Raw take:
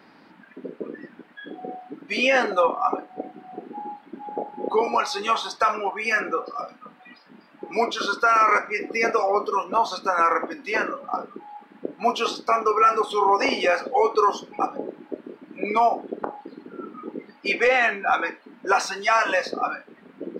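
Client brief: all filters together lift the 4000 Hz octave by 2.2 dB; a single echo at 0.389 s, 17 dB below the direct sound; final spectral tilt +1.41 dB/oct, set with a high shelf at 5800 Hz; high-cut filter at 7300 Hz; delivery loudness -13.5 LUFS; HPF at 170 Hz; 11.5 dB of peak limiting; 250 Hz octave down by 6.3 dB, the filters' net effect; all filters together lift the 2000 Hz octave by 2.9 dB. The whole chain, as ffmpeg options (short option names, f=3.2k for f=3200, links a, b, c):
-af "highpass=170,lowpass=7.3k,equalizer=f=250:t=o:g=-8,equalizer=f=2k:t=o:g=3.5,equalizer=f=4k:t=o:g=5,highshelf=f=5.8k:g=-8.5,alimiter=limit=-18dB:level=0:latency=1,aecho=1:1:389:0.141,volume=15dB"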